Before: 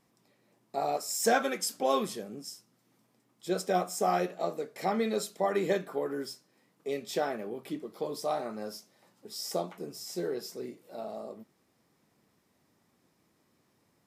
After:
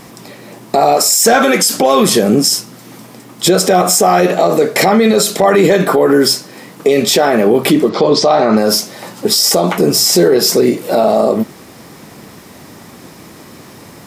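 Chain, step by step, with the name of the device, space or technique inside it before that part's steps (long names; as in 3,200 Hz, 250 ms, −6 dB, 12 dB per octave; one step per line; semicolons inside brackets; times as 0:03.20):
0:07.89–0:08.57: low-pass filter 5,800 Hz 24 dB per octave
loud club master (downward compressor 1.5 to 1, threshold −39 dBFS, peak gain reduction 7 dB; hard clipping −24 dBFS, distortion −29 dB; boost into a limiter +35.5 dB)
level −1 dB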